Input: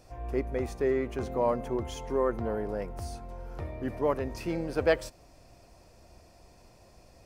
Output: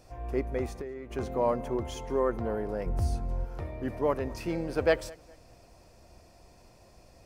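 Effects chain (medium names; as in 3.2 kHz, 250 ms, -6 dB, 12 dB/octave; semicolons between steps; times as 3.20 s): 0.66–1.11 s: compression 16:1, threshold -36 dBFS, peak gain reduction 14 dB; 2.86–3.45 s: bass shelf 320 Hz +11.5 dB; filtered feedback delay 206 ms, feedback 32%, low-pass 4.4 kHz, level -23 dB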